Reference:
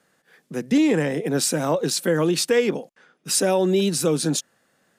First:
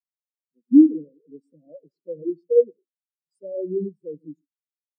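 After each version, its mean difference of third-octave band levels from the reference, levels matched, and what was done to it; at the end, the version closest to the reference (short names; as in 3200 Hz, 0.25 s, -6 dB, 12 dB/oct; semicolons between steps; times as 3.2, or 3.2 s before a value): 22.0 dB: Butterworth band-stop 1300 Hz, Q 1.1; non-linear reverb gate 0.16 s rising, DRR 8 dB; spectral expander 4:1; gain +3.5 dB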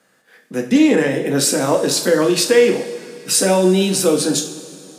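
5.0 dB: low shelf 200 Hz -5 dB; notches 50/100/150 Hz; two-slope reverb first 0.42 s, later 2.9 s, from -16 dB, DRR 2.5 dB; gain +4.5 dB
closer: second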